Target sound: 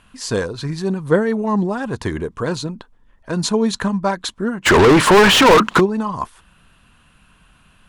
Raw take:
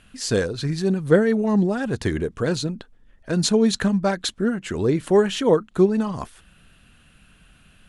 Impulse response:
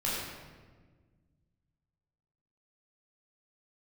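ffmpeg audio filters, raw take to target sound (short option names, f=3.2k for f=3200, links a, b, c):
-filter_complex "[0:a]equalizer=f=1k:w=2.9:g=12,asplit=3[a][b][c];[a]afade=t=out:st=4.65:d=0.02[d];[b]asplit=2[e][f];[f]highpass=f=720:p=1,volume=39dB,asoftclip=type=tanh:threshold=-3dB[g];[e][g]amix=inputs=2:normalize=0,lowpass=f=3.3k:p=1,volume=-6dB,afade=t=in:st=4.65:d=0.02,afade=t=out:st=5.79:d=0.02[h];[c]afade=t=in:st=5.79:d=0.02[i];[d][h][i]amix=inputs=3:normalize=0"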